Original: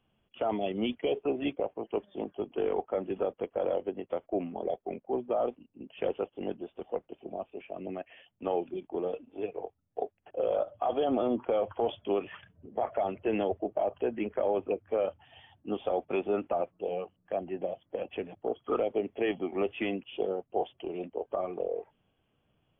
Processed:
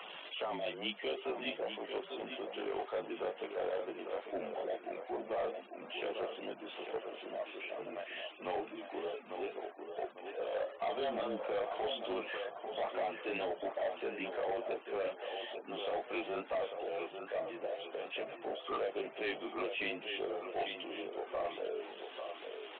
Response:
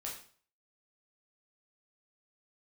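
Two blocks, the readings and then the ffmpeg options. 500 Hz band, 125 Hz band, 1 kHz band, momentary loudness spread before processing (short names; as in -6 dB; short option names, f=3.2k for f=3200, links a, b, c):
-7.0 dB, -13.0 dB, -5.0 dB, 9 LU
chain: -filter_complex "[0:a]aeval=exprs='val(0)+0.5*0.00668*sgn(val(0))':c=same,flanger=delay=16.5:depth=4.6:speed=2.3,highpass=620,asplit=2[a][b];[b]aecho=0:1:846|1692|2538|3384:0.355|0.121|0.041|0.0139[c];[a][c]amix=inputs=2:normalize=0,afftfilt=real='re*gte(hypot(re,im),0.00158)':imag='im*gte(hypot(re,im),0.00158)':win_size=1024:overlap=0.75,acompressor=mode=upward:threshold=-43dB:ratio=2.5,afreqshift=-33,aresample=8000,asoftclip=type=tanh:threshold=-32dB,aresample=44100,adynamicequalizer=threshold=0.00158:dfrequency=2400:dqfactor=0.7:tfrequency=2400:tqfactor=0.7:attack=5:release=100:ratio=0.375:range=2:mode=boostabove:tftype=highshelf,volume=2dB"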